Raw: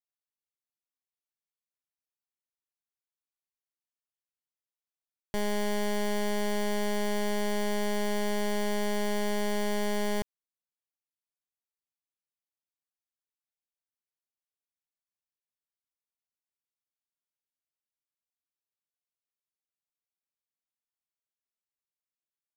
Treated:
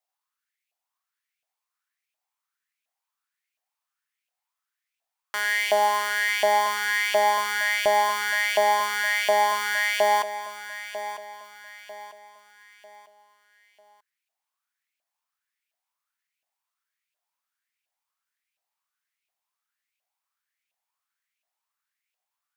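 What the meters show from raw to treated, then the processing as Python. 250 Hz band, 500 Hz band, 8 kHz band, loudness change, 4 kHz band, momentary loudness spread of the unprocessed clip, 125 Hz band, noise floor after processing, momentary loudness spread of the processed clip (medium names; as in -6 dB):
-18.5 dB, +5.0 dB, +7.5 dB, +8.5 dB, +9.5 dB, 2 LU, no reading, under -85 dBFS, 14 LU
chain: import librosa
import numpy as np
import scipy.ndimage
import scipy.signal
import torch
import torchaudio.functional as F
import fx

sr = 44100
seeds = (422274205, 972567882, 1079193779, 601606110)

y = fx.filter_lfo_highpass(x, sr, shape='saw_up', hz=1.4, low_hz=640.0, high_hz=2600.0, q=6.0)
y = fx.echo_feedback(y, sr, ms=946, feedback_pct=39, wet_db=-12.5)
y = y * 10.0 ** (6.5 / 20.0)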